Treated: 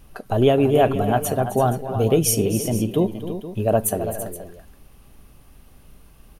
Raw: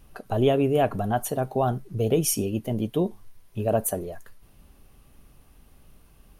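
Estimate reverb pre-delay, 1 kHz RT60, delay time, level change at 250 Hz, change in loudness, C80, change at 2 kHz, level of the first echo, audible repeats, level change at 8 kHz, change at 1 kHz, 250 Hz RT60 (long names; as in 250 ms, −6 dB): no reverb audible, no reverb audible, 262 ms, +5.0 dB, +4.5 dB, no reverb audible, +5.0 dB, −13.0 dB, 3, +5.0 dB, +5.0 dB, no reverb audible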